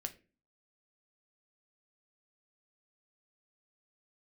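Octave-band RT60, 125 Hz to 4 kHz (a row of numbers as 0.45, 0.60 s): 0.50, 0.55, 0.40, 0.25, 0.35, 0.25 s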